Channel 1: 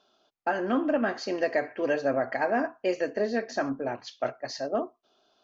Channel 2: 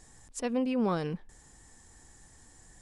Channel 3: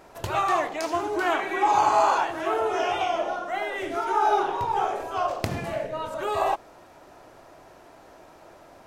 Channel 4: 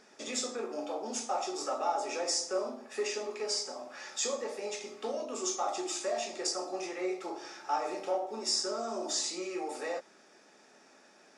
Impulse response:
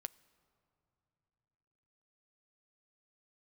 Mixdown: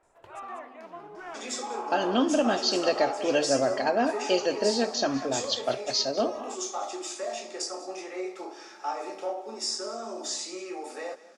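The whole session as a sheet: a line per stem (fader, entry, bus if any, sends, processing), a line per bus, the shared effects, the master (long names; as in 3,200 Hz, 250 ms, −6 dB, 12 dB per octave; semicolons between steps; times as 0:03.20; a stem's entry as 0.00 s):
+2.0 dB, 1.45 s, no send, echo send −16 dB, high shelf with overshoot 2,600 Hz +8 dB, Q 3
−16.0 dB, 0.00 s, no send, echo send −8 dB, noise gate with hold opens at −44 dBFS; downward compressor, threshold −38 dBFS, peak gain reduction 13 dB
−16.0 dB, 0.00 s, no send, echo send −16 dB, three-way crossover with the lows and the highs turned down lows −13 dB, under 310 Hz, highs −17 dB, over 2,900 Hz
−0.5 dB, 1.15 s, no send, echo send −17.5 dB, Butterworth high-pass 190 Hz 36 dB per octave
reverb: not used
echo: single-tap delay 194 ms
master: no processing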